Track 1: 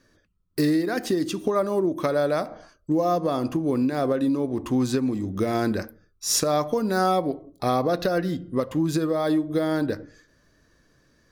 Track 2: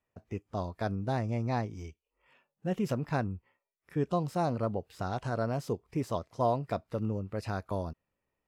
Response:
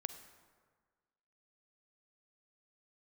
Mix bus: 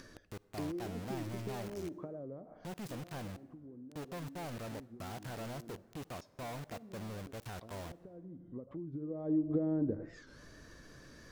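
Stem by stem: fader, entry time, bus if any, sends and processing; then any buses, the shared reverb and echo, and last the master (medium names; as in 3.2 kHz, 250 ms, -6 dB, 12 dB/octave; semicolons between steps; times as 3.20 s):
2.36 s -1 dB -> 2.89 s -12.5 dB -> 8.89 s -12.5 dB -> 9.38 s 0 dB, 0.00 s, send -13 dB, compression 1.5:1, threshold -42 dBFS, peak gain reduction 9 dB; low-pass that closes with the level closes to 400 Hz, closed at -28.5 dBFS; auto duck -13 dB, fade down 0.50 s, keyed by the second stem
-19.0 dB, 0.00 s, send -6.5 dB, companded quantiser 2-bit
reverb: on, RT60 1.6 s, pre-delay 37 ms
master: upward compressor, threshold -47 dBFS; warped record 45 rpm, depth 160 cents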